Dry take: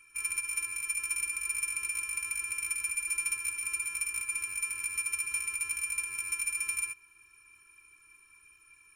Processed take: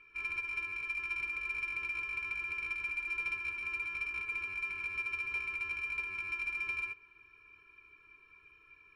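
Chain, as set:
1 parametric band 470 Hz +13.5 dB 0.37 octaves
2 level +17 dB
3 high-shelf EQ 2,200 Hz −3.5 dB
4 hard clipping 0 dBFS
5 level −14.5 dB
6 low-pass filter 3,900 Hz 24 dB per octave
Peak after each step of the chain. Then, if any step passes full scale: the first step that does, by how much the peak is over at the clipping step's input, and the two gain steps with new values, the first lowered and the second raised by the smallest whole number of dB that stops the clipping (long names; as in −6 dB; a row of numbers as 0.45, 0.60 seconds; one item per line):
−20.0, −3.0, −5.5, −5.5, −20.0, −27.0 dBFS
no step passes full scale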